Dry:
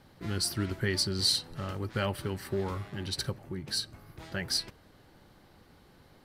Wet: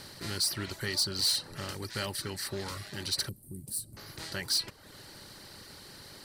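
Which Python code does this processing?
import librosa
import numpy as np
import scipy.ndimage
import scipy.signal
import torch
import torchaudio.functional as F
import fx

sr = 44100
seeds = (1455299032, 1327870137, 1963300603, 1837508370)

y = fx.bin_compress(x, sr, power=0.6)
y = fx.high_shelf(y, sr, hz=2200.0, db=10.5)
y = 10.0 ** (-14.0 / 20.0) * np.tanh(y / 10.0 ** (-14.0 / 20.0))
y = fx.curve_eq(y, sr, hz=(220.0, 1800.0, 6100.0, 8800.0), db=(0, -29, -15, 3), at=(3.29, 3.97))
y = fx.dereverb_blind(y, sr, rt60_s=0.74)
y = y * librosa.db_to_amplitude(-7.0)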